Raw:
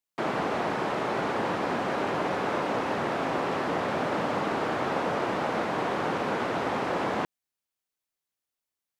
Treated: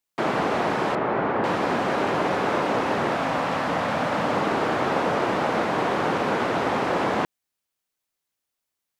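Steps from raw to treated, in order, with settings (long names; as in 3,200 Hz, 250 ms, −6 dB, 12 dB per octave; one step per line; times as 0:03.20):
0:00.95–0:01.44: low-pass filter 2,000 Hz 12 dB per octave
0:03.15–0:04.26: parametric band 380 Hz −14 dB 0.31 octaves
level +5 dB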